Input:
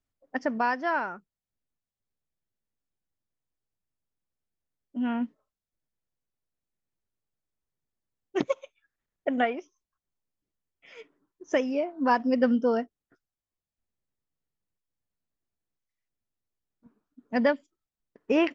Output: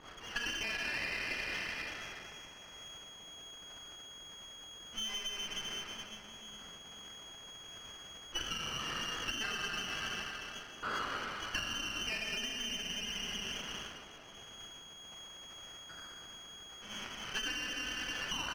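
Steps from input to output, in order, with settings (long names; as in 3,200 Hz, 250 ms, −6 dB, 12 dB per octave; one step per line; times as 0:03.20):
converter with a step at zero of −35.5 dBFS
tape delay 125 ms, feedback 43%, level −9.5 dB, low-pass 1,200 Hz
dense smooth reverb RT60 2.9 s, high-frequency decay 0.95×, DRR −4.5 dB
voice inversion scrambler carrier 3,700 Hz
low-pass that shuts in the quiet parts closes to 1,300 Hz, open at −22.5 dBFS
downward compressor 16 to 1, threshold −29 dBFS, peak gain reduction 18 dB
dynamic equaliser 1,600 Hz, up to +8 dB, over −58 dBFS, Q 3.3
pitch shifter −2 semitones
high-shelf EQ 2,100 Hz −10 dB
windowed peak hold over 5 samples
level +1 dB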